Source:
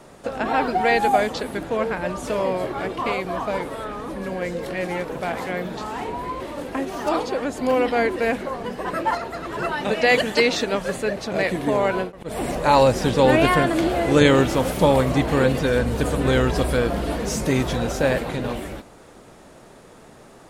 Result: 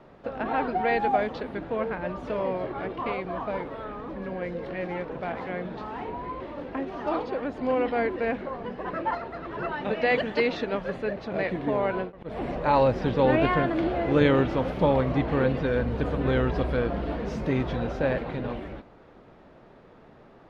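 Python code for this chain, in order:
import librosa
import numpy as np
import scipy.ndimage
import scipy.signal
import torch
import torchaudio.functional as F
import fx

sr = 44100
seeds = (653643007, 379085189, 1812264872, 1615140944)

y = fx.air_absorb(x, sr, metres=300.0)
y = F.gain(torch.from_numpy(y), -4.5).numpy()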